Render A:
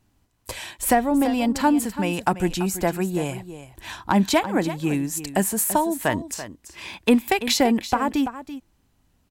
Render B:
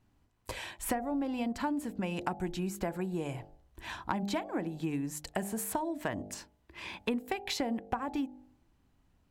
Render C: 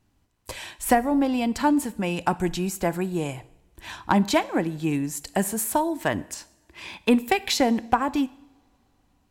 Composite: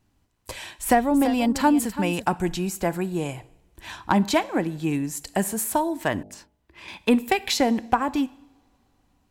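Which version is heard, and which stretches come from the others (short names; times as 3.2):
C
0.91–2.26 from A
6.23–6.88 from B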